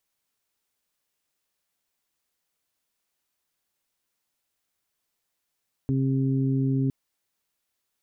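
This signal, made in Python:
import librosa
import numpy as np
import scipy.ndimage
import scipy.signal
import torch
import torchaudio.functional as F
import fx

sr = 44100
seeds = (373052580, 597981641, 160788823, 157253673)

y = fx.additive_steady(sr, length_s=1.01, hz=134.0, level_db=-23, upper_db=(-2, -12.5))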